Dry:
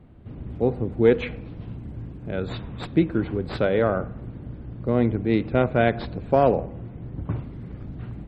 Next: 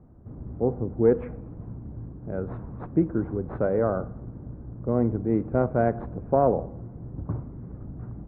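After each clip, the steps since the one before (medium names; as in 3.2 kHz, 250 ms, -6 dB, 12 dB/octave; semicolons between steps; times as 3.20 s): low-pass 1.3 kHz 24 dB/octave; trim -2.5 dB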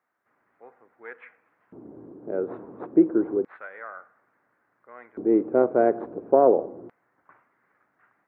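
LFO high-pass square 0.29 Hz 360–1900 Hz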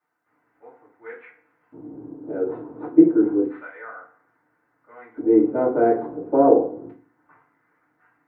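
FDN reverb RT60 0.37 s, low-frequency decay 1.35×, high-frequency decay 0.85×, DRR -9.5 dB; trim -8.5 dB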